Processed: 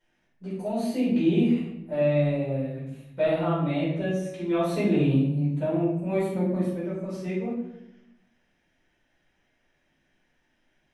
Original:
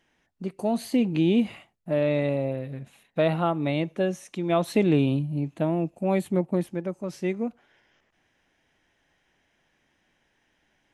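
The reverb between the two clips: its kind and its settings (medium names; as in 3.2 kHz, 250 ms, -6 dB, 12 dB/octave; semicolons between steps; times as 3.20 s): simulated room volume 250 m³, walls mixed, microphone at 4.7 m; trim -15 dB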